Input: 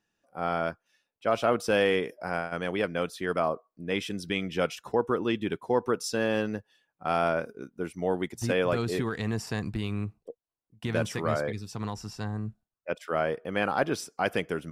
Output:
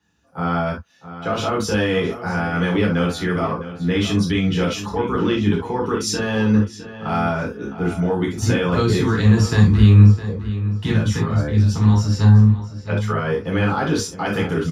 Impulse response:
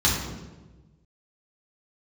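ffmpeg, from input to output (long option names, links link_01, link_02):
-filter_complex "[0:a]alimiter=limit=-21.5dB:level=0:latency=1:release=46,asettb=1/sr,asplit=3[link_01][link_02][link_03];[link_01]atrim=end=10.954[link_04];[link_02]atrim=start=10.95:end=11.9,asetpts=PTS-STARTPTS,afade=type=in:duration=0.004:curve=qsin,afade=type=out:start_time=0.946:duration=0.004:curve=qsin,acrossover=split=260[link_05][link_06];[link_06]acompressor=threshold=-38dB:ratio=3[link_07];[link_05][link_07]amix=inputs=2:normalize=0[link_08];[link_03]atrim=start=11.896[link_09];[link_04][link_08]acrossfade=duration=0.004:curve1=hsin:curve2=qsin[link_10];[link_10][link_09]acrossfade=duration=0.004:curve1=qsin:curve2=hsin,asplit=2[link_11][link_12];[link_12]adelay=660,lowpass=frequency=4500:poles=1,volume=-13dB,asplit=2[link_13][link_14];[link_14]adelay=660,lowpass=frequency=4500:poles=1,volume=0.34,asplit=2[link_15][link_16];[link_16]adelay=660,lowpass=frequency=4500:poles=1,volume=0.34[link_17];[link_11][link_13][link_15][link_17]amix=inputs=4:normalize=0[link_18];[1:a]atrim=start_sample=2205,atrim=end_sample=3528[link_19];[link_18][link_19]afir=irnorm=-1:irlink=0,volume=-3.5dB"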